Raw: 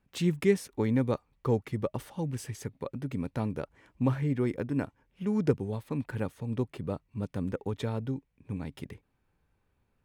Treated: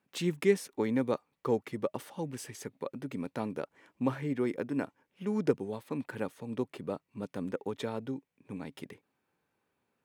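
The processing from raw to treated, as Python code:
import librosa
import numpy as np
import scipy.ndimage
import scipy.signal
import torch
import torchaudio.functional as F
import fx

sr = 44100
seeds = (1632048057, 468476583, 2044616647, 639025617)

y = scipy.signal.sosfilt(scipy.signal.butter(2, 230.0, 'highpass', fs=sr, output='sos'), x)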